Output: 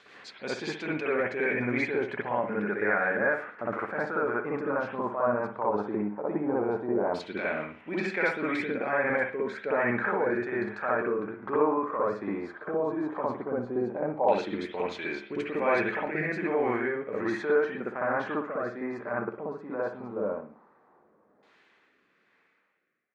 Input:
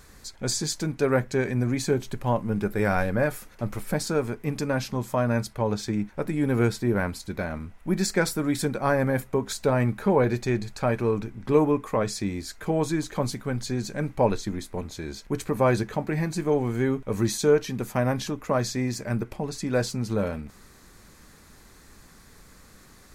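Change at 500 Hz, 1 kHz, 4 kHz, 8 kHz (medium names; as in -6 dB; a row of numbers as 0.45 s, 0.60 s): -2.5 dB, 0.0 dB, -11.0 dB, under -20 dB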